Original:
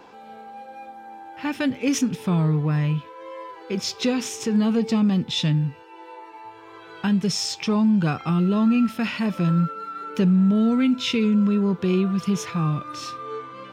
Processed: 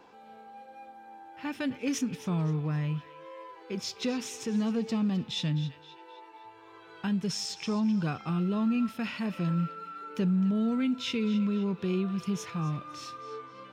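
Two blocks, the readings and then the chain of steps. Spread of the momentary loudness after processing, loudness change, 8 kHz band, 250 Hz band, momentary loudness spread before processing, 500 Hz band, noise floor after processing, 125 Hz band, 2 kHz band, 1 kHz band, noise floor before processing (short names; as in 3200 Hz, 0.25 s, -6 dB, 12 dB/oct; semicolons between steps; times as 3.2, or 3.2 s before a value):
21 LU, -8.5 dB, -8.5 dB, -8.5 dB, 20 LU, -8.5 dB, -52 dBFS, -8.5 dB, -8.0 dB, -8.5 dB, -44 dBFS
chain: narrowing echo 0.26 s, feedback 48%, band-pass 2800 Hz, level -12 dB; gain -8.5 dB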